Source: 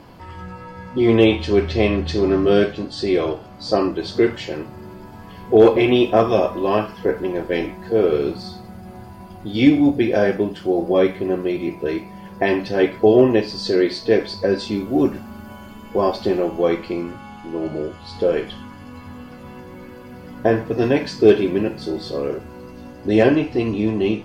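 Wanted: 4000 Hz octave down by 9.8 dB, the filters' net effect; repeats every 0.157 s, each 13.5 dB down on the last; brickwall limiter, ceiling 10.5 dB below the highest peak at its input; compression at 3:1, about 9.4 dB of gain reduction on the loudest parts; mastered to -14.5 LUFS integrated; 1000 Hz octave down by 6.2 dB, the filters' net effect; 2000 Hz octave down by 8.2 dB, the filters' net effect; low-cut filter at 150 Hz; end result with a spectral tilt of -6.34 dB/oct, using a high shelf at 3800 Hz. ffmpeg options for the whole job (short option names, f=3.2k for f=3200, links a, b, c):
-af "highpass=150,equalizer=f=1k:t=o:g=-8,equalizer=f=2k:t=o:g=-4.5,highshelf=f=3.8k:g=-6.5,equalizer=f=4k:t=o:g=-6.5,acompressor=threshold=-21dB:ratio=3,alimiter=limit=-20.5dB:level=0:latency=1,aecho=1:1:157|314:0.211|0.0444,volume=16.5dB"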